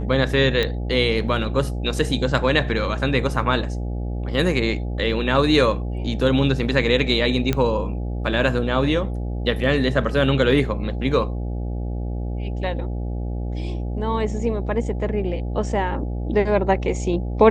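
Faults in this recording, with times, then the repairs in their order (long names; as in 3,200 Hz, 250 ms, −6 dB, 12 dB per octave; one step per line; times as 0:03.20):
mains buzz 60 Hz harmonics 14 −26 dBFS
0:00.63: click −10 dBFS
0:07.53: click −8 dBFS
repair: click removal
hum removal 60 Hz, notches 14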